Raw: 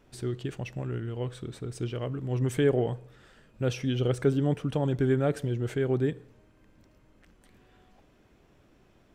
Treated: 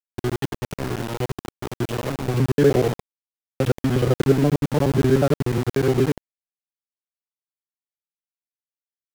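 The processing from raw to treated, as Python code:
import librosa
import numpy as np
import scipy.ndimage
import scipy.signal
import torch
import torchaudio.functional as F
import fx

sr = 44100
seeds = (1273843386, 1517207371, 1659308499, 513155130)

y = fx.local_reverse(x, sr, ms=60.0)
y = fx.env_lowpass_down(y, sr, base_hz=1600.0, full_db=-24.5)
y = np.where(np.abs(y) >= 10.0 ** (-31.5 / 20.0), y, 0.0)
y = y * librosa.db_to_amplitude(8.0)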